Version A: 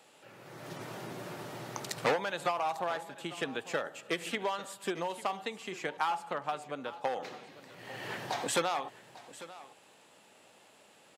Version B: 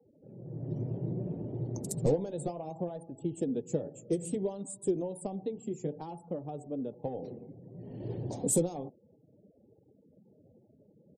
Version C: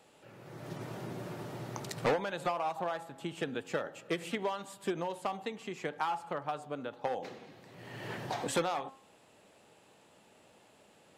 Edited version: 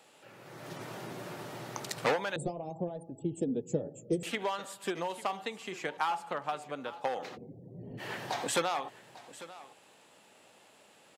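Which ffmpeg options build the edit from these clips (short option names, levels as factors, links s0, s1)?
-filter_complex "[1:a]asplit=2[s0][s1];[0:a]asplit=3[s2][s3][s4];[s2]atrim=end=2.362[s5];[s0]atrim=start=2.358:end=4.232[s6];[s3]atrim=start=4.228:end=7.38[s7];[s1]atrim=start=7.34:end=8.01[s8];[s4]atrim=start=7.97[s9];[s5][s6]acrossfade=d=0.004:c1=hsin:c2=hsin[s10];[s10][s7]acrossfade=d=0.004:c1=hsin:c2=hsin[s11];[s11][s8]acrossfade=d=0.04:c1=tri:c2=tri[s12];[s12][s9]acrossfade=d=0.04:c1=tri:c2=tri"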